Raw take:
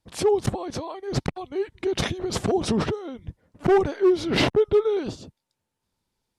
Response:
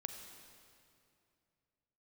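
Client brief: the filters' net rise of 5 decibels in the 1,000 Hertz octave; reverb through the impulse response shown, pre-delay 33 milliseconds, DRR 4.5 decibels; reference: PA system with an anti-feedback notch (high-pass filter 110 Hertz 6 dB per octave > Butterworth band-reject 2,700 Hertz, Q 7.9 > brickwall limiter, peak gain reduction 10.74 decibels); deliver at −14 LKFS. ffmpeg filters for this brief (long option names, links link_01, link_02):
-filter_complex "[0:a]equalizer=frequency=1000:width_type=o:gain=7,asplit=2[link_01][link_02];[1:a]atrim=start_sample=2205,adelay=33[link_03];[link_02][link_03]afir=irnorm=-1:irlink=0,volume=-2.5dB[link_04];[link_01][link_04]amix=inputs=2:normalize=0,highpass=frequency=110:poles=1,asuperstop=centerf=2700:order=8:qfactor=7.9,volume=12dB,alimiter=limit=-3.5dB:level=0:latency=1"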